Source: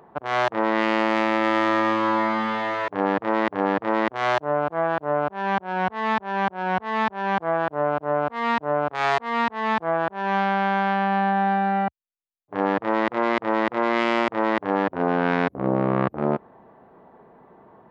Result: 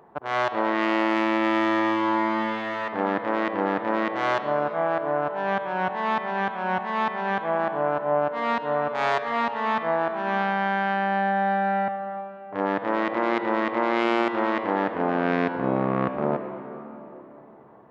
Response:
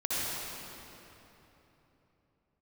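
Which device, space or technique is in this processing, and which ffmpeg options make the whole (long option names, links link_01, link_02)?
filtered reverb send: -filter_complex "[0:a]asplit=2[link_01][link_02];[link_02]highpass=250,lowpass=3600[link_03];[1:a]atrim=start_sample=2205[link_04];[link_03][link_04]afir=irnorm=-1:irlink=0,volume=-14dB[link_05];[link_01][link_05]amix=inputs=2:normalize=0,volume=-3.5dB"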